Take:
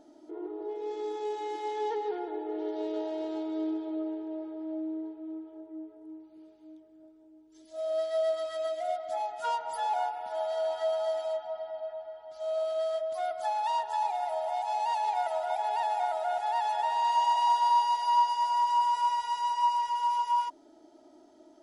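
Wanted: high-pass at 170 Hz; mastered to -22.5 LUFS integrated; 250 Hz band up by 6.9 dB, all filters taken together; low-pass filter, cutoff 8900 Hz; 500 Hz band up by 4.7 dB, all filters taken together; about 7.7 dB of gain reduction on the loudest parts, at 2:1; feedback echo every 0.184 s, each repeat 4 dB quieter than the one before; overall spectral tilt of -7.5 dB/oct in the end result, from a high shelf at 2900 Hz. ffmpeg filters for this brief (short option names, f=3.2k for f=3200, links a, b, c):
-af "highpass=170,lowpass=8.9k,equalizer=f=250:t=o:g=8,equalizer=f=500:t=o:g=5,highshelf=f=2.9k:g=3.5,acompressor=threshold=-34dB:ratio=2,aecho=1:1:184|368|552|736|920|1104|1288|1472|1656:0.631|0.398|0.25|0.158|0.0994|0.0626|0.0394|0.0249|0.0157,volume=8.5dB"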